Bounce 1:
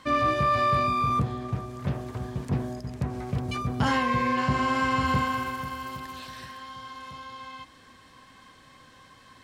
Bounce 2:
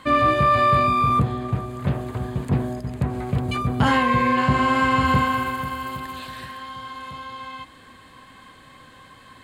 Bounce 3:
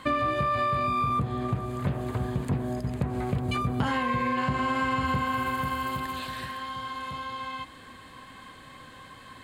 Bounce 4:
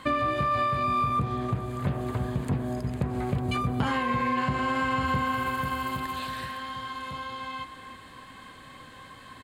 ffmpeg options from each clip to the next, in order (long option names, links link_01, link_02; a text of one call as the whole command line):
ffmpeg -i in.wav -af "equalizer=frequency=5600:width=4.2:gain=-15,volume=6dB" out.wav
ffmpeg -i in.wav -af "acompressor=threshold=-24dB:ratio=6" out.wav
ffmpeg -i in.wav -filter_complex "[0:a]asplit=2[link_01][link_02];[link_02]adelay=310,highpass=300,lowpass=3400,asoftclip=type=hard:threshold=-23.5dB,volume=-12dB[link_03];[link_01][link_03]amix=inputs=2:normalize=0" out.wav